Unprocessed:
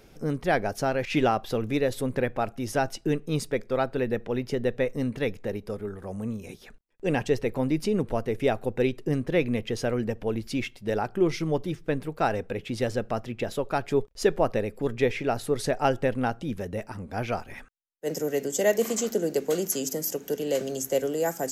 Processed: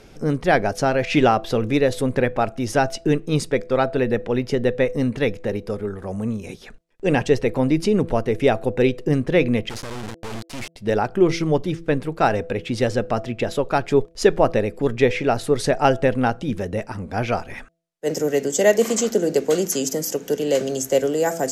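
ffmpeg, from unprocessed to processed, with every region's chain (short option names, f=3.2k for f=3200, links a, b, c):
-filter_complex "[0:a]asettb=1/sr,asplit=3[a][b][c];[a]atrim=end=9.694[d];[b]atrim=start=9.69:end=10.76,asetpts=PTS-STARTPTS,afade=t=in:d=0.004:c=qsin,afade=t=out:st=1.066:d=0.004:c=qsin,acompressor=threshold=-28dB:ratio=6:attack=3.2:release=140:knee=1:detection=peak,acrusher=bits=3:dc=4:mix=0:aa=0.000001,asoftclip=type=hard:threshold=-31.5dB[e];[c]atrim=start=10.756[f];[d][e]acrossfade=d=0.004:c1=hsin:c2=qsin[g];[g][f]acrossfade=d=0.004:c1=qsin:c2=hsin,lowpass=9.7k,bandreject=f=166.4:t=h:w=4,bandreject=f=332.8:t=h:w=4,bandreject=f=499.2:t=h:w=4,bandreject=f=665.6:t=h:w=4,volume=7dB"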